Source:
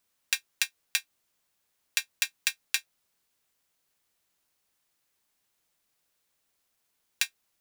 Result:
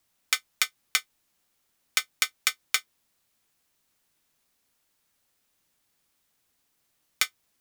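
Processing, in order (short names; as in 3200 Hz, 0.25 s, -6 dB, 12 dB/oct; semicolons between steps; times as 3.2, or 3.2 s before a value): frequency shift -330 Hz; gain +3 dB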